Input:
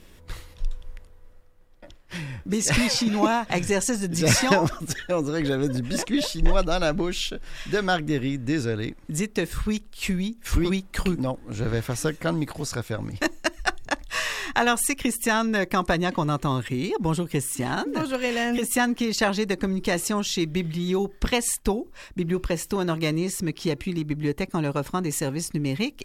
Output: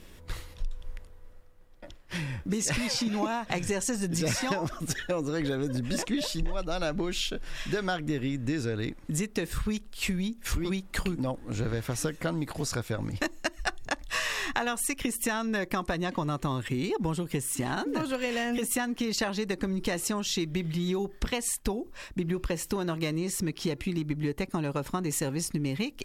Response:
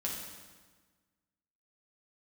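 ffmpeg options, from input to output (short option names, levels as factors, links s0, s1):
-af "acompressor=threshold=0.0501:ratio=6"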